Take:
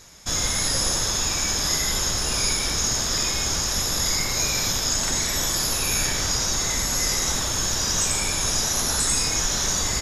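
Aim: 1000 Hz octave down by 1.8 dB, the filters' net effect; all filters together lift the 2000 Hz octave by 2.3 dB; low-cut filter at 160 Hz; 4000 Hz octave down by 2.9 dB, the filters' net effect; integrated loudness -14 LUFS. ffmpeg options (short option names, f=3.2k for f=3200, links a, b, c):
-af "highpass=160,equalizer=f=1k:t=o:g=-3.5,equalizer=f=2k:t=o:g=5,equalizer=f=4k:t=o:g=-5,volume=9dB"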